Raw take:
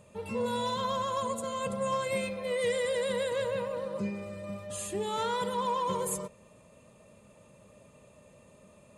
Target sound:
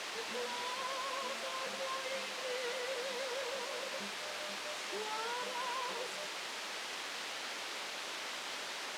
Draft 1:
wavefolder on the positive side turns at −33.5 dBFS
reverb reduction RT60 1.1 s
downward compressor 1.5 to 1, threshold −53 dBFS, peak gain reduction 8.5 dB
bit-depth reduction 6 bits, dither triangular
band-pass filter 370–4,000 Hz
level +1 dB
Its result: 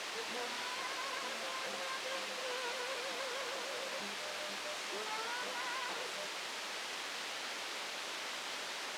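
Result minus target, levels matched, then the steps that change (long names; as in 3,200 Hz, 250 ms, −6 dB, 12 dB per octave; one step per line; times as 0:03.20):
wavefolder on the positive side: distortion +13 dB
change: wavefolder on the positive side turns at −27 dBFS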